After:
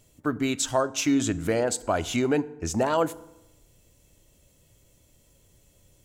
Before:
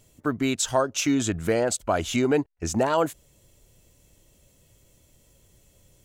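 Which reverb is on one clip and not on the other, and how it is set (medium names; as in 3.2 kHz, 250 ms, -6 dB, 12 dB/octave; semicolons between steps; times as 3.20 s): FDN reverb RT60 0.9 s, low-frequency decay 1.2×, high-frequency decay 0.65×, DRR 15.5 dB; trim -1.5 dB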